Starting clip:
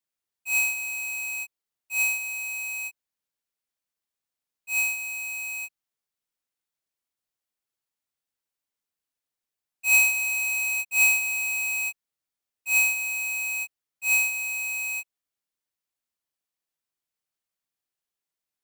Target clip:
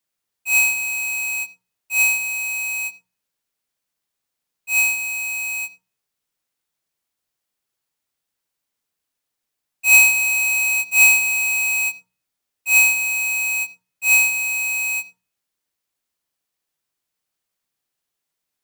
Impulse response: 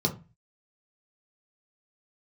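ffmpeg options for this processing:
-filter_complex "[0:a]asplit=2[link_01][link_02];[1:a]atrim=start_sample=2205,adelay=83[link_03];[link_02][link_03]afir=irnorm=-1:irlink=0,volume=-25.5dB[link_04];[link_01][link_04]amix=inputs=2:normalize=0,volume=7.5dB"

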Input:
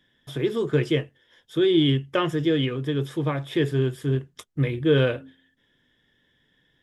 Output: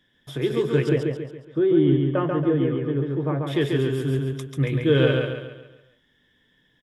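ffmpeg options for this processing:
ffmpeg -i in.wav -filter_complex "[0:a]asettb=1/sr,asplit=3[link_01][link_02][link_03];[link_01]atrim=end=0.894[link_04];[link_02]atrim=start=0.89:end=3.47,asetpts=PTS-STARTPTS,afade=type=in:duration=0.004:curve=qsin,afade=type=out:start_time=2.576:duration=0.004:curve=qsin,lowpass=1200[link_05];[link_03]atrim=start=3.466[link_06];[link_04][link_05]acrossfade=duration=0.004:curve1=hsin:curve2=qsin[link_07];[link_07][link_06]acrossfade=duration=0.004:curve1=qsin:curve2=hsin,aecho=1:1:139|278|417|556|695|834:0.668|0.294|0.129|0.0569|0.0251|0.011" out.wav

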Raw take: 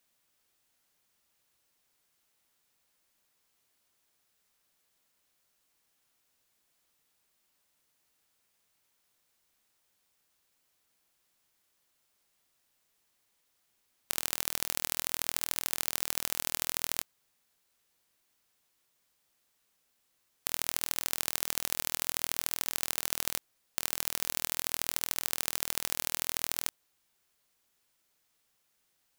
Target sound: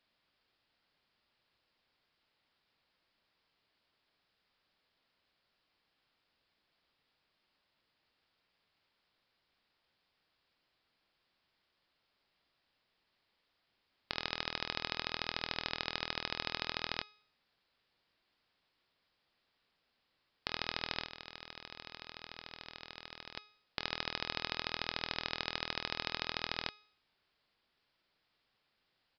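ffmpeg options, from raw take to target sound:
ffmpeg -i in.wav -filter_complex "[0:a]bandreject=frequency=419.7:width_type=h:width=4,bandreject=frequency=839.4:width_type=h:width=4,bandreject=frequency=1259.1:width_type=h:width=4,bandreject=frequency=1678.8:width_type=h:width=4,bandreject=frequency=2098.5:width_type=h:width=4,bandreject=frequency=2518.2:width_type=h:width=4,bandreject=frequency=2937.9:width_type=h:width=4,bandreject=frequency=3357.6:width_type=h:width=4,bandreject=frequency=3777.3:width_type=h:width=4,bandreject=frequency=4197:width_type=h:width=4,bandreject=frequency=4616.7:width_type=h:width=4,bandreject=frequency=5036.4:width_type=h:width=4,bandreject=frequency=5456.1:width_type=h:width=4,bandreject=frequency=5875.8:width_type=h:width=4,bandreject=frequency=6295.5:width_type=h:width=4,bandreject=frequency=6715.2:width_type=h:width=4,bandreject=frequency=7134.9:width_type=h:width=4,bandreject=frequency=7554.6:width_type=h:width=4,bandreject=frequency=7974.3:width_type=h:width=4,bandreject=frequency=8394:width_type=h:width=4,bandreject=frequency=8813.7:width_type=h:width=4,bandreject=frequency=9233.4:width_type=h:width=4,bandreject=frequency=9653.1:width_type=h:width=4,bandreject=frequency=10072.8:width_type=h:width=4,bandreject=frequency=10492.5:width_type=h:width=4,bandreject=frequency=10912.2:width_type=h:width=4,bandreject=frequency=11331.9:width_type=h:width=4,bandreject=frequency=11751.6:width_type=h:width=4,bandreject=frequency=12171.3:width_type=h:width=4,bandreject=frequency=12591:width_type=h:width=4,bandreject=frequency=13010.7:width_type=h:width=4,bandreject=frequency=13430.4:width_type=h:width=4,bandreject=frequency=13850.1:width_type=h:width=4,bandreject=frequency=14269.8:width_type=h:width=4,bandreject=frequency=14689.5:width_type=h:width=4,bandreject=frequency=15109.2:width_type=h:width=4,bandreject=frequency=15528.9:width_type=h:width=4,bandreject=frequency=15948.6:width_type=h:width=4,bandreject=frequency=16368.3:width_type=h:width=4,asettb=1/sr,asplit=3[link_01][link_02][link_03];[link_01]atrim=end=21.044[link_04];[link_02]atrim=start=21.04:end=23.37,asetpts=PTS-STARTPTS,afade=type=in:duration=0.004:curve=qsin,afade=type=out:start_time=2.326:duration=0.004:curve=qsin,acompressor=threshold=-35dB:ratio=10[link_05];[link_03]atrim=start=23.366[link_06];[link_04][link_05]acrossfade=duration=0.004:curve1=hsin:curve2=qsin[link_07];[link_07][link_06]acrossfade=duration=0.004:curve1=qsin:curve2=hsin,aresample=11025,aresample=44100,volume=1dB" out.wav

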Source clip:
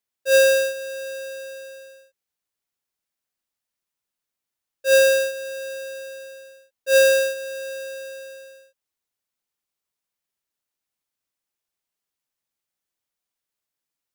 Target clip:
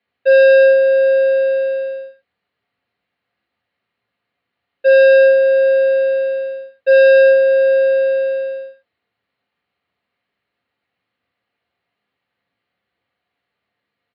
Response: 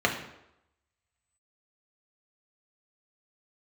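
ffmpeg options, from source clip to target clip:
-filter_complex "[1:a]atrim=start_sample=2205,afade=type=out:start_time=0.17:duration=0.01,atrim=end_sample=7938[link_01];[0:a][link_01]afir=irnorm=-1:irlink=0,acompressor=threshold=-1dB:ratio=6,aresample=11025,asoftclip=type=tanh:threshold=-10.5dB,aresample=44100,aemphasis=mode=reproduction:type=50fm,volume=3dB"

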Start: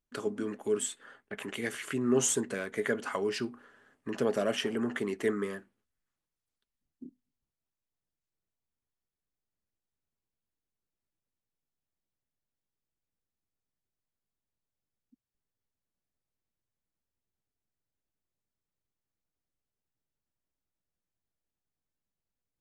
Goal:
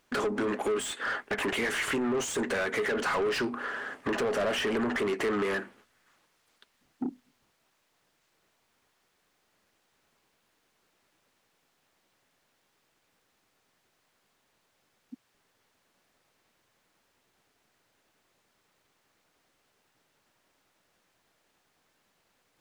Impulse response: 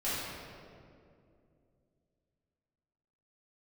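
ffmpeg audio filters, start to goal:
-filter_complex "[0:a]alimiter=limit=-23dB:level=0:latency=1:release=47,acompressor=threshold=-43dB:ratio=4,asplit=2[link_01][link_02];[link_02]highpass=frequency=720:poles=1,volume=26dB,asoftclip=type=tanh:threshold=-29.5dB[link_03];[link_01][link_03]amix=inputs=2:normalize=0,lowpass=frequency=2400:poles=1,volume=-6dB,volume=9dB"

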